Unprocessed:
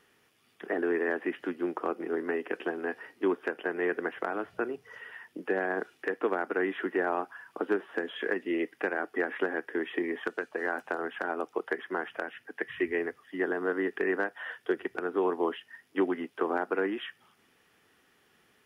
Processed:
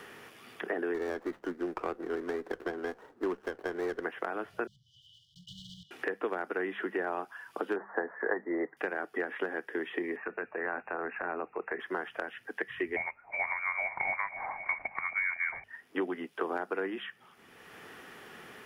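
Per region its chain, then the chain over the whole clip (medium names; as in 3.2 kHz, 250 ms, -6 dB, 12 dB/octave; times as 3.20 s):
0.94–4.04 s: median filter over 25 samples + resonant high shelf 2.1 kHz -7.5 dB, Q 3 + sliding maximum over 5 samples
4.67–5.91 s: block-companded coder 5-bit + brick-wall FIR band-stop 160–2900 Hz + distance through air 170 m
7.76–8.77 s: steep low-pass 2 kHz 96 dB/octave + peaking EQ 850 Hz +13 dB 1.4 oct + three bands expanded up and down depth 40%
10.16–11.80 s: transient shaper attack -6 dB, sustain +3 dB + brick-wall FIR low-pass 2.8 kHz
12.96–15.64 s: backward echo that repeats 254 ms, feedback 57%, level -13.5 dB + frequency inversion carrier 2.6 kHz
whole clip: peaking EQ 280 Hz -3 dB 0.54 oct; hum notches 50/100/150/200 Hz; three bands compressed up and down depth 70%; trim -3 dB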